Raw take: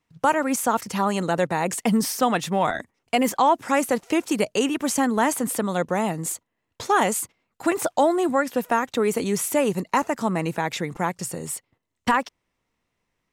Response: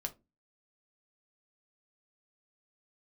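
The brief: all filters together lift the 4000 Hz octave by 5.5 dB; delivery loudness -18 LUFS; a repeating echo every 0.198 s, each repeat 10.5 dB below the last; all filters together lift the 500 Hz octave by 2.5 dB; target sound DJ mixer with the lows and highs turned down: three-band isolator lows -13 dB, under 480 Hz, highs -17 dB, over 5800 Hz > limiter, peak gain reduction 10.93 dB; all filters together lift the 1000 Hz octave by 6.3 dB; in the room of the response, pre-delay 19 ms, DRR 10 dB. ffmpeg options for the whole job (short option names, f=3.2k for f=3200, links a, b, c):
-filter_complex "[0:a]equalizer=f=500:t=o:g=5,equalizer=f=1k:t=o:g=6.5,equalizer=f=4k:t=o:g=8.5,aecho=1:1:198|396|594:0.299|0.0896|0.0269,asplit=2[a][b];[1:a]atrim=start_sample=2205,adelay=19[c];[b][c]afir=irnorm=-1:irlink=0,volume=-9.5dB[d];[a][d]amix=inputs=2:normalize=0,acrossover=split=480 5800:gain=0.224 1 0.141[e][f][g];[e][f][g]amix=inputs=3:normalize=0,volume=5.5dB,alimiter=limit=-6dB:level=0:latency=1"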